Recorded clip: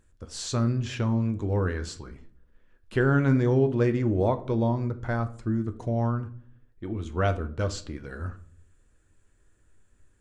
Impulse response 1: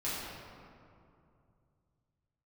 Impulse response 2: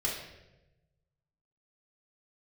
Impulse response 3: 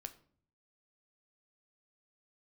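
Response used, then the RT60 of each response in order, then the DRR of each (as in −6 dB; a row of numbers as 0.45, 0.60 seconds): 3; 2.5, 1.0, 0.55 seconds; −10.0, −6.0, 8.5 decibels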